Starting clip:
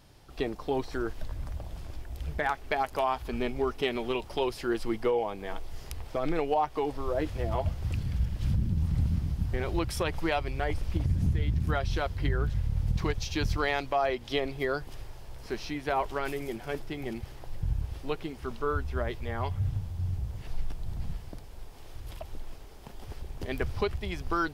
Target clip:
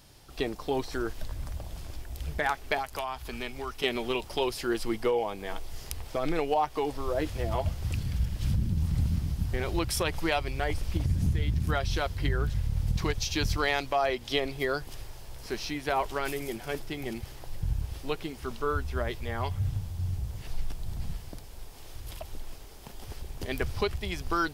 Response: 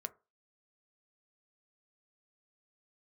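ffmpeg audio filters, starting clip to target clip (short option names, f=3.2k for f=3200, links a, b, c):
-filter_complex "[0:a]asettb=1/sr,asplit=3[a][b][c];[a]atrim=end=2.784[d];[b]atrim=start=2.78:end=3.84,asetpts=PTS-STARTPTS,afade=t=in:d=0.004:c=qsin,afade=t=out:st=1.056:d=0.004:c=qsin,acrossover=split=140|840[e][f][g];[e]acompressor=threshold=-39dB:ratio=4[h];[f]acompressor=threshold=-41dB:ratio=4[i];[g]acompressor=threshold=-35dB:ratio=4[j];[h][i][j]amix=inputs=3:normalize=0[k];[c]atrim=start=3.836[l];[d][k]acrossfade=d=0.004:c1=hsin:c2=qsin[m];[m][l]acrossfade=d=0.004:c1=qsin:c2=hsin,highshelf=f=3.4k:g=8.5"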